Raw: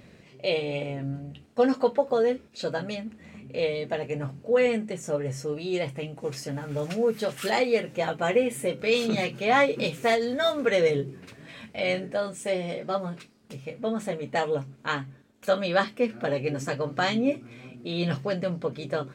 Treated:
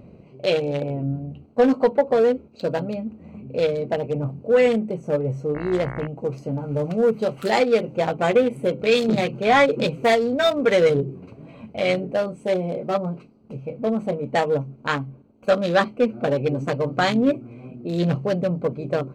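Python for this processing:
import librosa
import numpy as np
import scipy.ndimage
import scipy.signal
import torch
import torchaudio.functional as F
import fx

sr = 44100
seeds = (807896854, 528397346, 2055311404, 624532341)

y = fx.wiener(x, sr, points=25)
y = 10.0 ** (-14.5 / 20.0) * np.tanh(y / 10.0 ** (-14.5 / 20.0))
y = fx.dmg_buzz(y, sr, base_hz=60.0, harmonics=37, level_db=-42.0, tilt_db=-2, odd_only=False, at=(5.54, 6.06), fade=0.02)
y = y * 10.0 ** (7.0 / 20.0)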